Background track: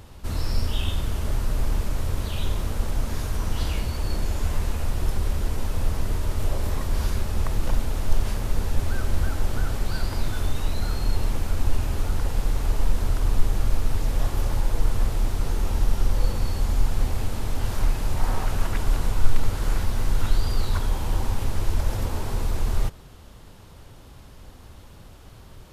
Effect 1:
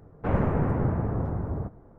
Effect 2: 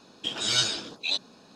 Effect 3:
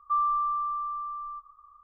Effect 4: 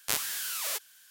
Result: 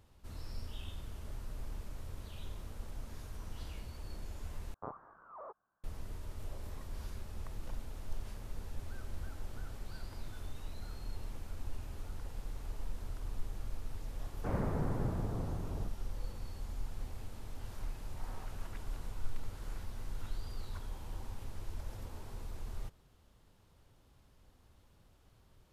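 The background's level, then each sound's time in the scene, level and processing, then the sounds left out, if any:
background track -19 dB
4.74 s: replace with 4 -2.5 dB + Chebyshev low-pass 1.2 kHz, order 5
14.20 s: add 1 -10.5 dB
not used: 2, 3

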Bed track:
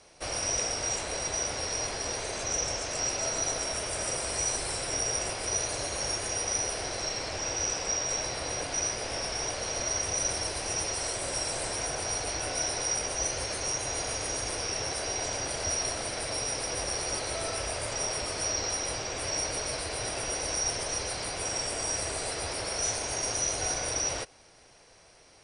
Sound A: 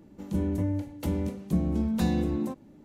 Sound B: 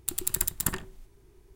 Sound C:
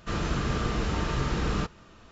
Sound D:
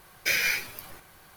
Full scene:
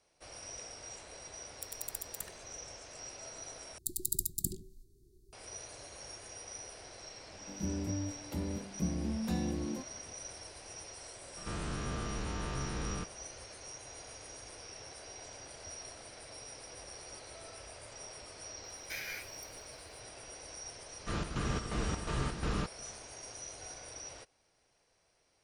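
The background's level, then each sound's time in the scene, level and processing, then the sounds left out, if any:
bed track -16.5 dB
1.54 s: add B -8 dB + amplifier tone stack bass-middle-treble 5-5-5
3.78 s: replace with B -5.5 dB + Chebyshev band-stop 390–4100 Hz, order 4
7.29 s: add A -8.5 dB
11.37 s: add C -8.5 dB + spectrogram pixelated in time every 100 ms
18.64 s: add D -16.5 dB
21.00 s: add C -6 dB + square tremolo 2.8 Hz, depth 60%, duty 65%

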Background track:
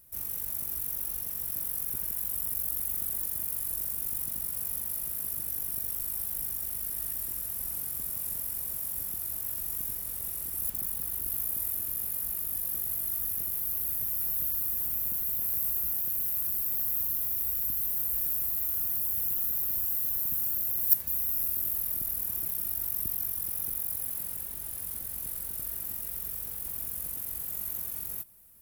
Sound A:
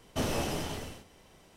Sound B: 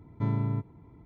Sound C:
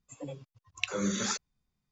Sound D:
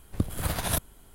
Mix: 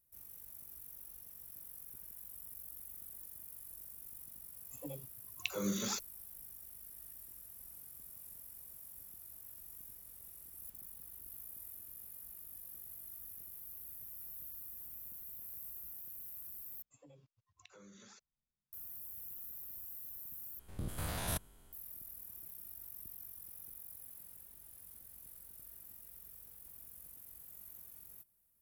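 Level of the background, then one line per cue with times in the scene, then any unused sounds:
background track -18 dB
4.62 s: add C -5 dB + peaking EQ 1.7 kHz -8 dB 0.6 oct
16.82 s: replace with C -15.5 dB + compression, threshold -40 dBFS
20.59 s: replace with D -7 dB + spectrogram pixelated in time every 100 ms
not used: A, B

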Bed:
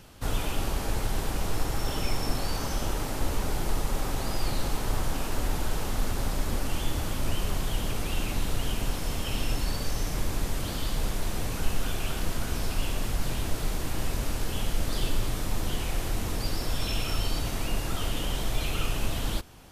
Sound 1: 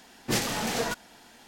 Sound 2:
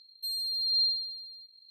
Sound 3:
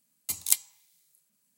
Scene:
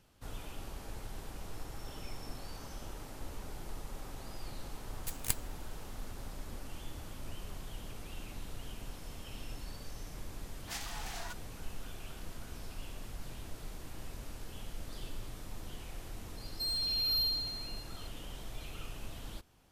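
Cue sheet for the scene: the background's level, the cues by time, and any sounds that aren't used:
bed -15.5 dB
4.78 s: add 3 -6.5 dB + half-wave rectifier
10.39 s: add 1 -13 dB + brick-wall FIR high-pass 640 Hz
16.37 s: add 2 + saturation -29 dBFS

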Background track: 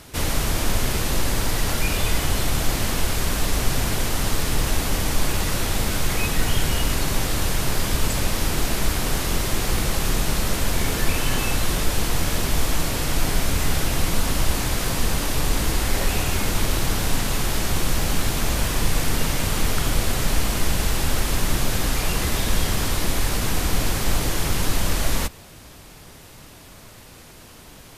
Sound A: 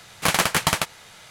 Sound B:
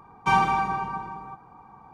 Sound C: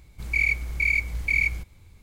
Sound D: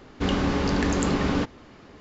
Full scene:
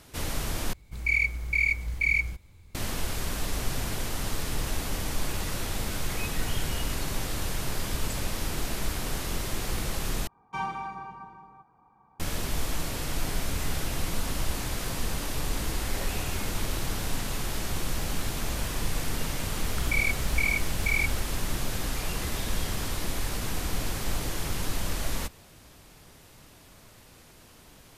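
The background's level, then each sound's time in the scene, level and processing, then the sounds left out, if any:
background track -8.5 dB
0.73 s: replace with C -2 dB
10.27 s: replace with B -12 dB
19.58 s: add C -5.5 dB + swell ahead of each attack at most 62 dB/s
not used: A, D

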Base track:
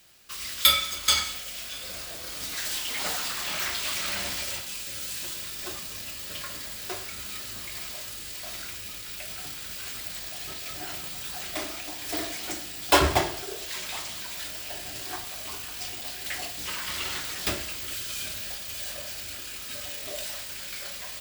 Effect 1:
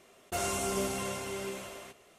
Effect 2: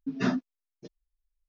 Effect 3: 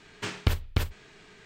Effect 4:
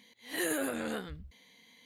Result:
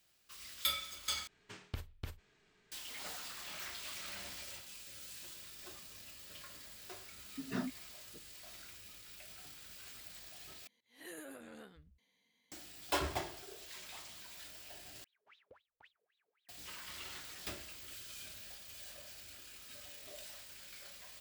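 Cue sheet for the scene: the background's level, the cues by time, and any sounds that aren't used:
base track -15.5 dB
1.27 s: replace with 3 -18 dB + treble shelf 8.5 kHz +3 dB
7.31 s: add 2 -11.5 dB
10.67 s: replace with 4 -17 dB
15.04 s: replace with 3 -12.5 dB + wah-wah 3.8 Hz 460–3900 Hz, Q 19
not used: 1

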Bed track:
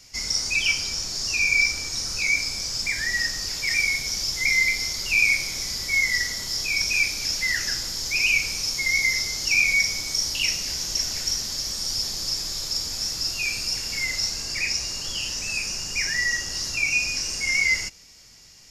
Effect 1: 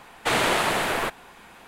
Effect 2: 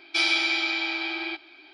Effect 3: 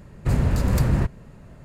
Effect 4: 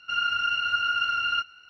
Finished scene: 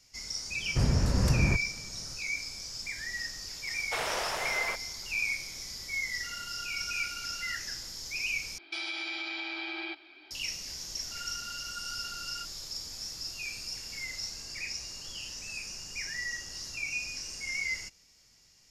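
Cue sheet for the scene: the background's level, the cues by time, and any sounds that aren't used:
bed track -12 dB
0.50 s: add 3 -5.5 dB + steep low-pass 12 kHz
3.66 s: add 1 -11.5 dB + resonant low shelf 390 Hz -7.5 dB, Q 1.5
6.15 s: add 4 -17 dB
8.58 s: replace with 2 -4 dB + compression, threshold -29 dBFS
11.03 s: add 4 -17.5 dB

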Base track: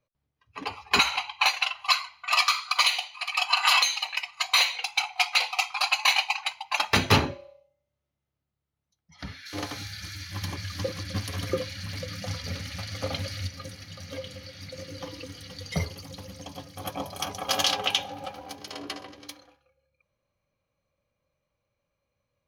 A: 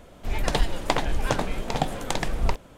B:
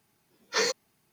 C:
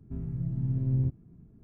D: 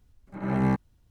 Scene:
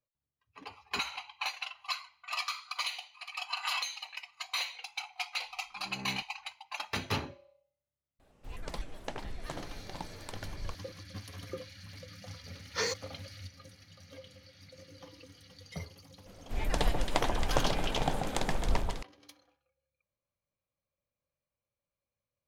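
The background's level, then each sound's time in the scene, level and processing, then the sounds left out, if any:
base track -13 dB
5.44 s: add D -18 dB + spectrogram pixelated in time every 50 ms
8.19 s: add A -16.5 dB + vibrato with a chosen wave square 4 Hz, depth 250 cents
12.22 s: add B -6 dB
16.26 s: add A -6.5 dB + echo whose repeats swap between lows and highs 136 ms, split 1.3 kHz, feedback 79%, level -5 dB
not used: C

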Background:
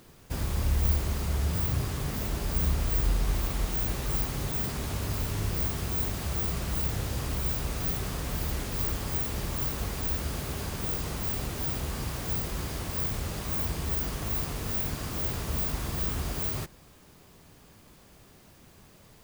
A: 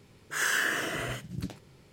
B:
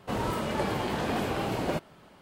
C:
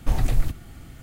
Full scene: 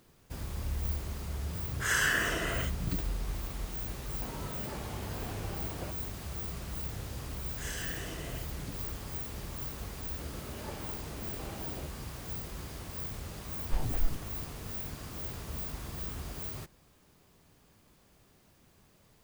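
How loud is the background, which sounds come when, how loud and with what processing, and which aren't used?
background -8.5 dB
1.49 s: add A -0.5 dB
4.13 s: add B -14 dB
7.25 s: add A -8.5 dB + peaking EQ 1.3 kHz -13.5 dB 0.84 oct
10.09 s: add B -14.5 dB + rotary cabinet horn 1.2 Hz
13.65 s: add C -7 dB + lamp-driven phase shifter 3.8 Hz

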